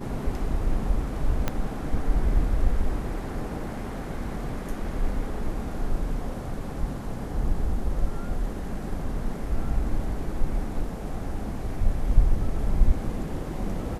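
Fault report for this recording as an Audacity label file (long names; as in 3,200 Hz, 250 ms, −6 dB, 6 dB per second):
1.480000	1.480000	click −11 dBFS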